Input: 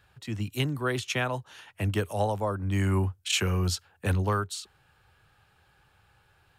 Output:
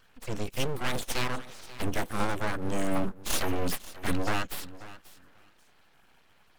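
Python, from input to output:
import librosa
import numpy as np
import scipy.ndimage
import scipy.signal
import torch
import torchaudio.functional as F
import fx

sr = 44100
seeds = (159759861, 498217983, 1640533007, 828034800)

p1 = fx.spec_quant(x, sr, step_db=30)
p2 = np.clip(p1, -10.0 ** (-30.0 / 20.0), 10.0 ** (-30.0 / 20.0))
p3 = p1 + (p2 * librosa.db_to_amplitude(-6.0))
p4 = fx.echo_feedback(p3, sr, ms=537, feedback_pct=16, wet_db=-17)
y = np.abs(p4)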